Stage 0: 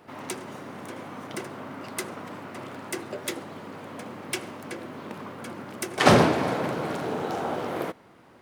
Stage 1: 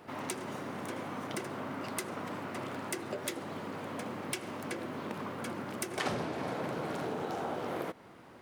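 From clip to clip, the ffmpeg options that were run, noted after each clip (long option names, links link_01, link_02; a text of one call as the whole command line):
ffmpeg -i in.wav -af "acompressor=threshold=-33dB:ratio=6" out.wav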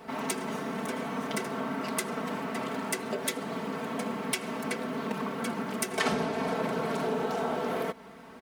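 ffmpeg -i in.wav -af "aecho=1:1:4.5:0.94,volume=3dB" out.wav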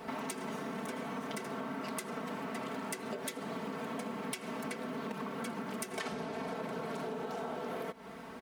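ffmpeg -i in.wav -af "acompressor=threshold=-38dB:ratio=6,volume=1.5dB" out.wav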